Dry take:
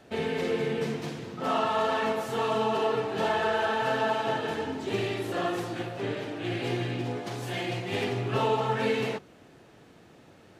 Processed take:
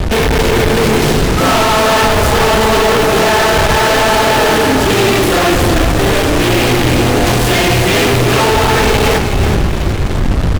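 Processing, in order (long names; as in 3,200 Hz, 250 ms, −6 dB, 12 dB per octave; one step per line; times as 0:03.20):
wind on the microphone 84 Hz −33 dBFS
fuzz pedal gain 49 dB, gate −44 dBFS
echo with shifted repeats 373 ms, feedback 47%, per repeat −36 Hz, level −7 dB
level +3 dB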